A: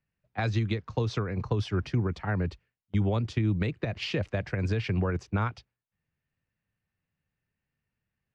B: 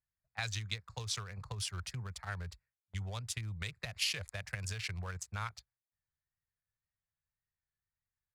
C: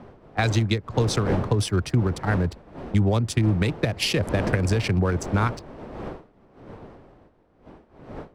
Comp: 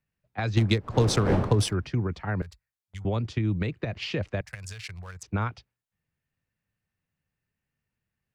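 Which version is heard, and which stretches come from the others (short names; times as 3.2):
A
0.57–1.73 from C
2.42–3.05 from B
4.41–5.23 from B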